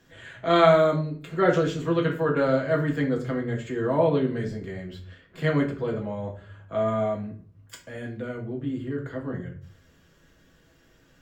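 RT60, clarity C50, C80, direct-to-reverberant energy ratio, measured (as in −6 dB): 0.40 s, 10.0 dB, 15.0 dB, −1.5 dB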